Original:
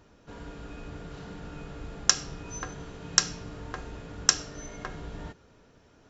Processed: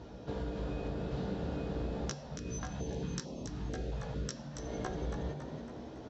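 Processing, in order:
high-pass filter 41 Hz
flat-topped bell 1,700 Hz −8 dB
downward compressor 6 to 1, threshold −46 dBFS, peak gain reduction 28.5 dB
high-frequency loss of the air 160 metres
double-tracking delay 16 ms −3 dB
echo with shifted repeats 278 ms, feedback 51%, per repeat +87 Hz, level −7.5 dB
0:02.14–0:04.59: notch on a step sequencer 4.5 Hz 330–1,600 Hz
level +10 dB

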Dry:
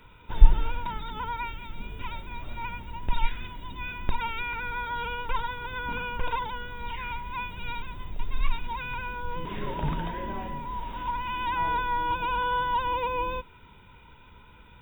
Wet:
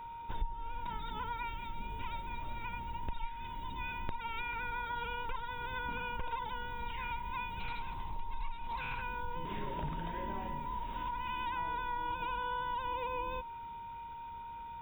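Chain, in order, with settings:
downward compressor 5 to 1, threshold −31 dBFS, peak gain reduction 22.5 dB
steady tone 930 Hz −39 dBFS
0:07.60–0:09.02: highs frequency-modulated by the lows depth 0.22 ms
level −4 dB

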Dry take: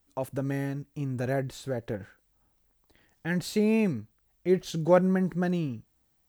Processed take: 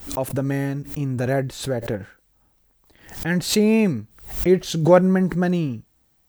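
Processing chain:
background raised ahead of every attack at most 110 dB per second
level +7 dB

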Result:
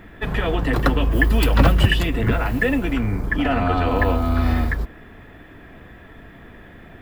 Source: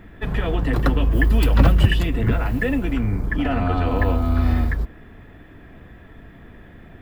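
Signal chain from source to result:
low-shelf EQ 310 Hz −6 dB
level +4.5 dB

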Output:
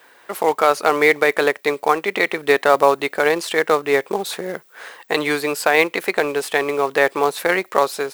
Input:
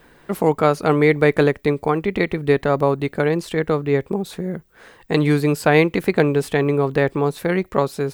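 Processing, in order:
high-pass filter 620 Hz 12 dB per octave
automatic gain control gain up to 7 dB
in parallel at −5.5 dB: log-companded quantiser 4 bits
on the sum: boost into a limiter +0.5 dB
level −1 dB

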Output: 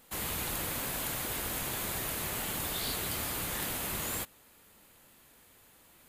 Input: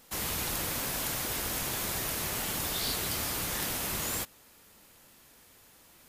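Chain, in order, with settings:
parametric band 5,500 Hz −7 dB 0.49 octaves
level −1.5 dB

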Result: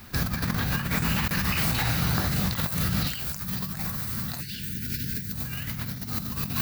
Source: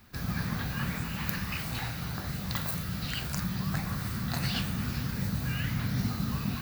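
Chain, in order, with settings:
high-shelf EQ 6,000 Hz +3.5 dB, from 0:03.07 +11.5 dB
compressor whose output falls as the input rises −34 dBFS, ratio −0.5
0:04.41–0:05.32: time-frequency box erased 480–1,400 Hz
level +6.5 dB

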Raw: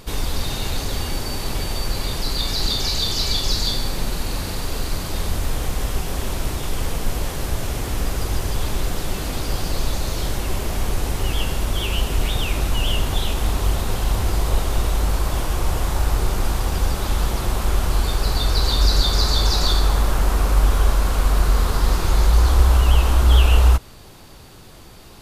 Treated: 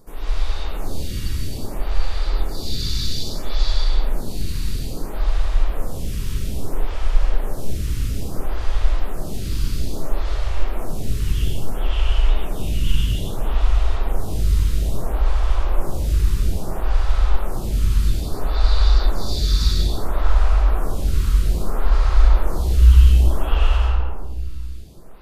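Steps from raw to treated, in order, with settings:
low-shelf EQ 110 Hz +10 dB
convolution reverb RT60 2.3 s, pre-delay 55 ms, DRR −6.5 dB
phaser with staggered stages 0.6 Hz
level −9.5 dB

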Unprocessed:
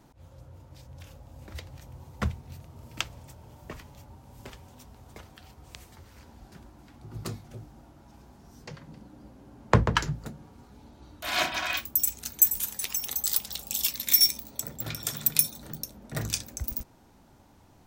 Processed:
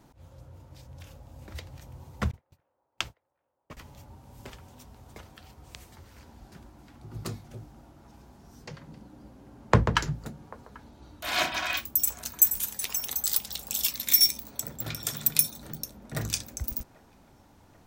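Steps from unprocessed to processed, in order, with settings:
0:02.31–0:03.77: noise gate −38 dBFS, range −47 dB
delay with a band-pass on its return 790 ms, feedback 69%, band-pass 840 Hz, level −22 dB

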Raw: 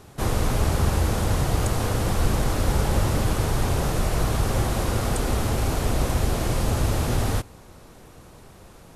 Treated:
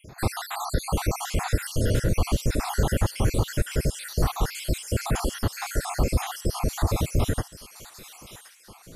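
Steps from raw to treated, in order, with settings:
time-frequency cells dropped at random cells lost 68%
delay with a high-pass on its return 1,072 ms, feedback 39%, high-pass 2,200 Hz, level −9 dB
in parallel at −2.5 dB: brickwall limiter −18.5 dBFS, peak gain reduction 7.5 dB
on the sum: level −1.5 dB

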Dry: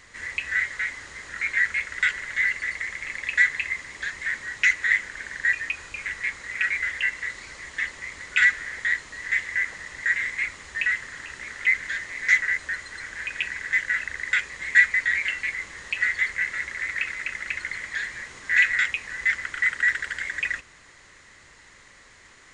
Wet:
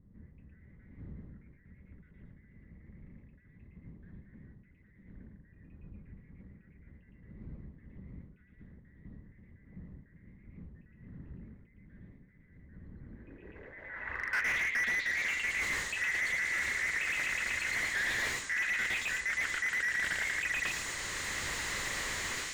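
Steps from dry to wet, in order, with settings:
automatic gain control gain up to 16 dB
on a send: echo through a band-pass that steps 113 ms, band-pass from 3,100 Hz, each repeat 0.7 octaves, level 0 dB
on the sum: brickwall limiter −9.5 dBFS, peak gain reduction 9.5 dB
reversed playback
downward compressor 10 to 1, threshold −27 dBFS, peak gain reduction 13.5 dB
reversed playback
low-pass filter sweep 190 Hz → 8,700 Hz, 0:13.01–0:15.47
slew-rate limiting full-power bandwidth 83 Hz
level −1.5 dB

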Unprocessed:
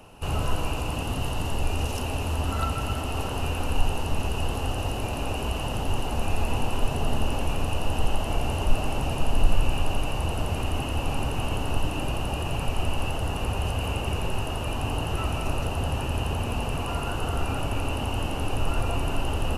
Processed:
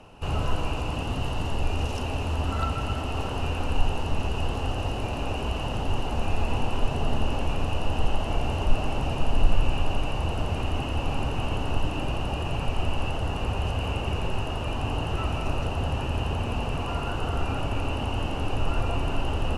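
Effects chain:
high-frequency loss of the air 61 metres

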